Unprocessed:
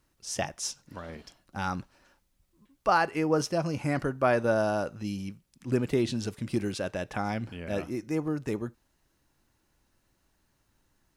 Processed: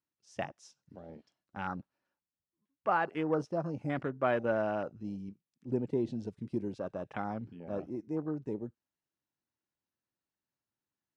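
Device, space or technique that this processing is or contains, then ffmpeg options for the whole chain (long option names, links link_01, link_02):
over-cleaned archive recording: -filter_complex "[0:a]highpass=120,lowpass=7100,afwtdn=0.0158,deesser=0.9,asettb=1/sr,asplit=3[link_01][link_02][link_03];[link_01]atrim=end=1.734[link_04];[link_02]atrim=start=1.73:end=3.03,asetpts=PTS-STARTPTS,afade=type=in:duration=0.004:curve=qsin,afade=type=out:start_time=1.296:duration=0.004:curve=qsin,highshelf=frequency=4400:gain=-7.5[link_05];[link_03]atrim=start=3.026[link_06];[link_04][link_05]acrossfade=duration=0.004:curve1=hsin:curve2=qsin[link_07];[link_07][link_06]acrossfade=duration=0.004:curve1=qsin:curve2=hsin,volume=-5dB"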